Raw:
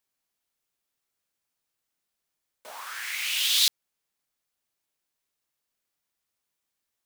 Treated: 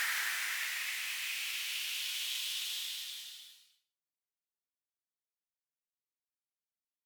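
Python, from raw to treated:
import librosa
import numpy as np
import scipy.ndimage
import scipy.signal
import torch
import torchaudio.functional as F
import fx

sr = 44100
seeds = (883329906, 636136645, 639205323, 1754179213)

y = fx.doppler_pass(x, sr, speed_mps=47, closest_m=3.1, pass_at_s=2.6)
y = fx.paulstretch(y, sr, seeds[0], factor=4.1, window_s=0.5, from_s=2.67)
y = y * librosa.db_to_amplitude(3.5)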